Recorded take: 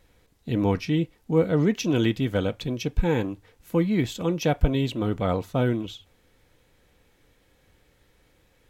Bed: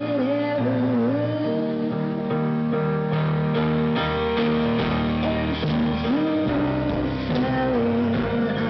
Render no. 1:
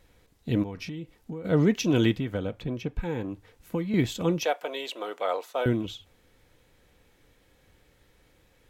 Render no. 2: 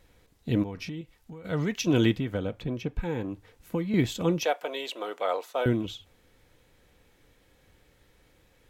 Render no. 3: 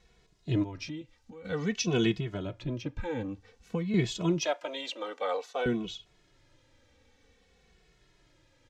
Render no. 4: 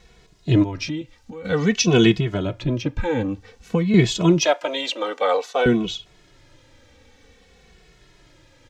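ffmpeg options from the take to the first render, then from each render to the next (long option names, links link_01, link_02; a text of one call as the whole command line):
ffmpeg -i in.wav -filter_complex "[0:a]asplit=3[link_01][link_02][link_03];[link_01]afade=type=out:start_time=0.62:duration=0.02[link_04];[link_02]acompressor=threshold=-32dB:ratio=20:attack=3.2:release=140:knee=1:detection=peak,afade=type=in:start_time=0.62:duration=0.02,afade=type=out:start_time=1.44:duration=0.02[link_05];[link_03]afade=type=in:start_time=1.44:duration=0.02[link_06];[link_04][link_05][link_06]amix=inputs=3:normalize=0,asettb=1/sr,asplit=3[link_07][link_08][link_09];[link_07]atrim=end=2.134[link_10];[link_08]atrim=start=2.13:end=3.94,asetpts=PTS-STARTPTS,afade=type=in:duration=0.004:curve=qsin,afade=type=out:start_time=1.806:duration=0.004:curve=qsin,acrossover=split=720|2400[link_11][link_12][link_13];[link_11]acompressor=threshold=-28dB:ratio=4[link_14];[link_12]acompressor=threshold=-42dB:ratio=4[link_15];[link_13]acompressor=threshold=-54dB:ratio=4[link_16];[link_14][link_15][link_16]amix=inputs=3:normalize=0[link_17];[link_09]atrim=start=3.936[link_18];[link_10][link_17]acrossfade=duration=0.004:curve1=hsin:curve2=qsin[link_19];[link_19][link_18]acrossfade=duration=0.004:curve1=qsin:curve2=hsin,asettb=1/sr,asplit=3[link_20][link_21][link_22];[link_20]atrim=end=4.444[link_23];[link_21]atrim=start=4.44:end=5.66,asetpts=PTS-STARTPTS,afade=type=in:duration=0.004:curve=qsin,afade=type=out:start_time=1.216:duration=0.004:curve=qsin,highpass=frequency=480:width=0.5412,highpass=frequency=480:width=1.3066[link_24];[link_22]atrim=start=5.656[link_25];[link_23][link_24]acrossfade=duration=0.004:curve1=hsin:curve2=qsin[link_26];[link_26][link_25]acrossfade=duration=0.004:curve1=qsin:curve2=hsin" out.wav
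ffmpeg -i in.wav -filter_complex "[0:a]asettb=1/sr,asplit=3[link_01][link_02][link_03];[link_01]atrim=end=1.014[link_04];[link_02]atrim=start=1.01:end=1.87,asetpts=PTS-STARTPTS,afade=type=in:duration=0.004:curve=qsin,afade=type=out:start_time=0.856:duration=0.004:curve=qsin,equalizer=frequency=310:width_type=o:width=2.3:gain=-9.5[link_05];[link_03]atrim=start=1.866[link_06];[link_04][link_05]acrossfade=duration=0.004:curve1=hsin:curve2=qsin[link_07];[link_07][link_06]acrossfade=duration=0.004:curve1=qsin:curve2=hsin" out.wav
ffmpeg -i in.wav -filter_complex "[0:a]lowpass=frequency=6000:width_type=q:width=1.6,asplit=2[link_01][link_02];[link_02]adelay=2.3,afreqshift=-0.52[link_03];[link_01][link_03]amix=inputs=2:normalize=1" out.wav
ffmpeg -i in.wav -af "volume=11.5dB" out.wav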